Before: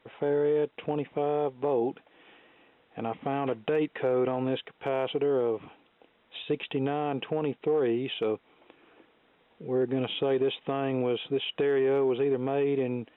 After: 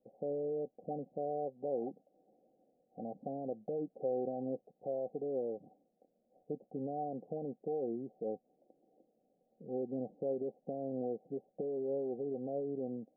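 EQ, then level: rippled Chebyshev low-pass 780 Hz, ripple 9 dB; peaking EQ 67 Hz -12 dB 2 oct; -3.0 dB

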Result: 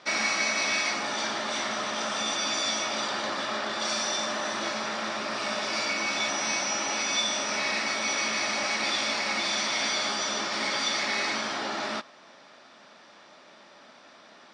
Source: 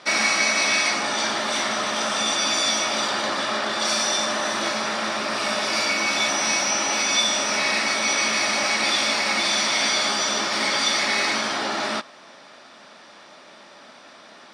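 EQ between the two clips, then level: distance through air 93 m; peaking EQ 7.3 kHz +5.5 dB 1.1 oct; -5.5 dB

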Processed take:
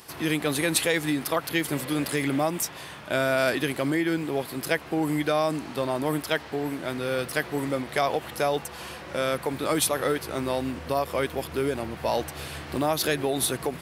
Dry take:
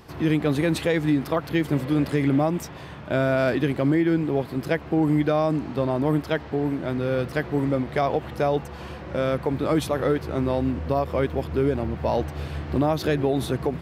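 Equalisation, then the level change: tilt EQ +3 dB/octave; peaking EQ 10 kHz +7 dB 0.6 oct; 0.0 dB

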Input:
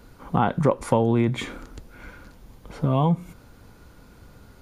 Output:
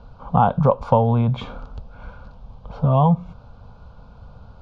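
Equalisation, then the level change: low-pass 6 kHz 12 dB/octave; distance through air 260 m; static phaser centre 800 Hz, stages 4; +8.0 dB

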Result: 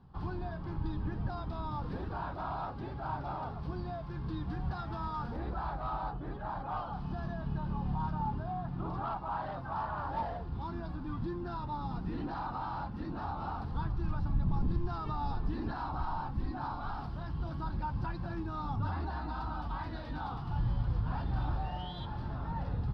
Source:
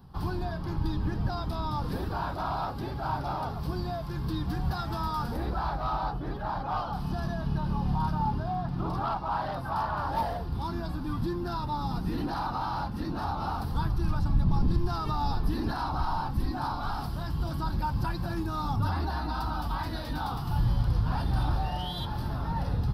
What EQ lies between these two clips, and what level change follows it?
low-pass 3 kHz 12 dB/octave; -6.0 dB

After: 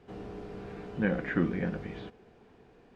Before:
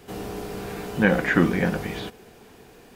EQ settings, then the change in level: dynamic bell 860 Hz, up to -5 dB, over -40 dBFS, Q 1.6; tape spacing loss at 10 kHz 24 dB; -7.5 dB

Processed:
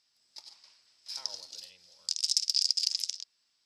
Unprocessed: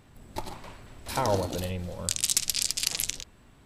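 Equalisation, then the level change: band-pass filter 5.1 kHz, Q 8.5; +7.5 dB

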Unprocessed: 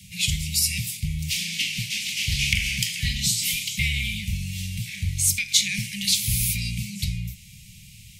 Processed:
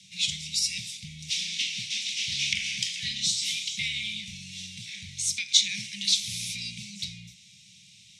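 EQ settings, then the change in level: cabinet simulation 210–8600 Hz, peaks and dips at 830 Hz +8 dB, 3.7 kHz +9 dB, 5.7 kHz +7 dB; -7.0 dB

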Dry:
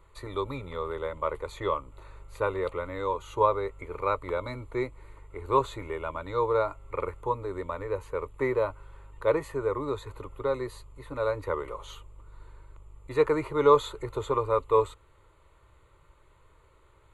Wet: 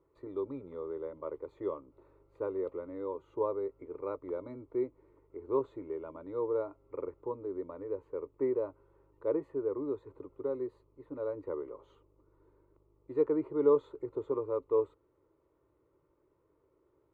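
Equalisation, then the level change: band-pass filter 320 Hz, Q 2.1; 0.0 dB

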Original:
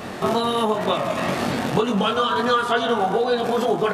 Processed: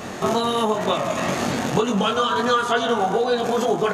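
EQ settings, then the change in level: peaking EQ 6.6 kHz +10.5 dB 0.27 oct; 0.0 dB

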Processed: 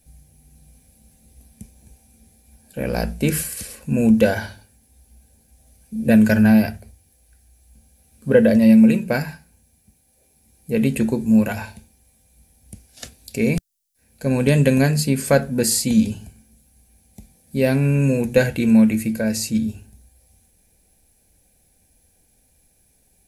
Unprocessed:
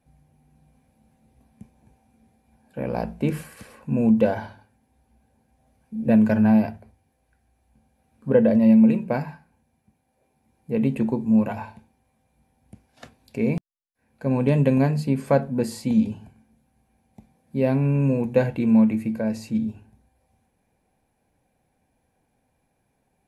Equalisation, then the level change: tone controls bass +9 dB, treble +15 dB; dynamic bell 1.5 kHz, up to +8 dB, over -44 dBFS, Q 1.6; graphic EQ 125/250/1000 Hz -11/-6/-11 dB; +6.5 dB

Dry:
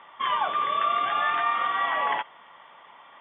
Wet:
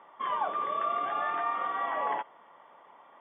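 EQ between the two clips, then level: band-pass filter 410 Hz, Q 0.69; 0.0 dB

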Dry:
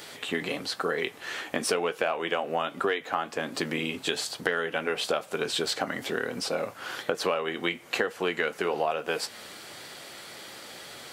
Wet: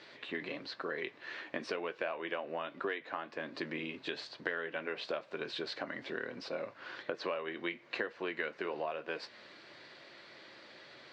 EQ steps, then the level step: cabinet simulation 160–3900 Hz, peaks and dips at 180 Hz -7 dB, 250 Hz -5 dB, 450 Hz -7 dB, 780 Hz -10 dB, 1.3 kHz -7 dB, 3.2 kHz -8 dB; peaking EQ 2.3 kHz -3 dB 0.66 oct; -4.5 dB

